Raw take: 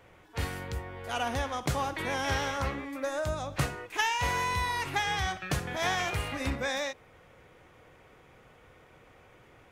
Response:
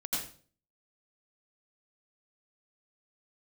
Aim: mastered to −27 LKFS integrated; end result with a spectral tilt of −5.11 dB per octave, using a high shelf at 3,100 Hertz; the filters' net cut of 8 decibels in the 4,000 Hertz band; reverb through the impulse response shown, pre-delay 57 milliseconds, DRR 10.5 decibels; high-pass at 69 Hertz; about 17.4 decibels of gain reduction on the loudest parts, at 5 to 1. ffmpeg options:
-filter_complex "[0:a]highpass=69,highshelf=frequency=3100:gain=-3,equalizer=frequency=4000:width_type=o:gain=-9,acompressor=threshold=-46dB:ratio=5,asplit=2[link_01][link_02];[1:a]atrim=start_sample=2205,adelay=57[link_03];[link_02][link_03]afir=irnorm=-1:irlink=0,volume=-14.5dB[link_04];[link_01][link_04]amix=inputs=2:normalize=0,volume=21.5dB"

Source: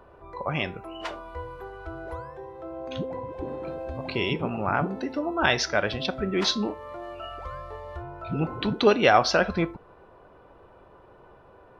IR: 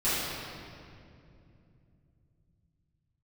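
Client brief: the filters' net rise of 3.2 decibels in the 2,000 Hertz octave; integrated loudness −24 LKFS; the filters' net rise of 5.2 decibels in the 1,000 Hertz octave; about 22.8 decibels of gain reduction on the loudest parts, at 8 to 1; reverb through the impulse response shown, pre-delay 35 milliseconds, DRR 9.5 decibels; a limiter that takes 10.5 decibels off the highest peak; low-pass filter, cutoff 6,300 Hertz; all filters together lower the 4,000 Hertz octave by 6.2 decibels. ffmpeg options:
-filter_complex "[0:a]lowpass=6300,equalizer=frequency=1000:width_type=o:gain=7,equalizer=frequency=2000:width_type=o:gain=3.5,equalizer=frequency=4000:width_type=o:gain=-9,acompressor=threshold=-33dB:ratio=8,alimiter=level_in=5.5dB:limit=-24dB:level=0:latency=1,volume=-5.5dB,asplit=2[link_01][link_02];[1:a]atrim=start_sample=2205,adelay=35[link_03];[link_02][link_03]afir=irnorm=-1:irlink=0,volume=-22dB[link_04];[link_01][link_04]amix=inputs=2:normalize=0,volume=15.5dB"

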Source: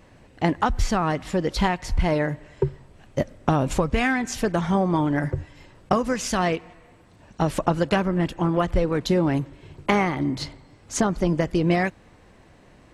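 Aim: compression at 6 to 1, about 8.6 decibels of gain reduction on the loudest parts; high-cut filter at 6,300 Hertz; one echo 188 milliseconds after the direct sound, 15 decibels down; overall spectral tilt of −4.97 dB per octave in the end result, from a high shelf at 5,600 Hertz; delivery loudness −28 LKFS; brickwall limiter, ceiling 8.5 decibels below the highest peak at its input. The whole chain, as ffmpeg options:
ffmpeg -i in.wav -af "lowpass=6300,highshelf=frequency=5600:gain=5.5,acompressor=threshold=-26dB:ratio=6,alimiter=limit=-23dB:level=0:latency=1,aecho=1:1:188:0.178,volume=6dB" out.wav

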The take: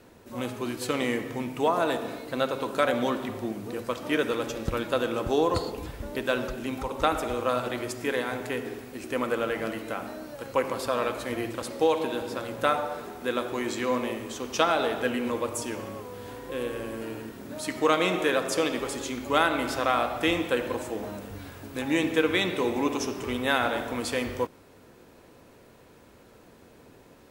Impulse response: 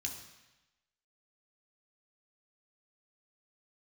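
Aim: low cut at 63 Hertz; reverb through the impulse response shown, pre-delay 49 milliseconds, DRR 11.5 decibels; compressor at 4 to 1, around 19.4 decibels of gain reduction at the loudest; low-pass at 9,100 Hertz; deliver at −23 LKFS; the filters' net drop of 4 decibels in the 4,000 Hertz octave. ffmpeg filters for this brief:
-filter_complex "[0:a]highpass=63,lowpass=9100,equalizer=frequency=4000:width_type=o:gain=-5,acompressor=threshold=-43dB:ratio=4,asplit=2[link_01][link_02];[1:a]atrim=start_sample=2205,adelay=49[link_03];[link_02][link_03]afir=irnorm=-1:irlink=0,volume=-11dB[link_04];[link_01][link_04]amix=inputs=2:normalize=0,volume=21dB"

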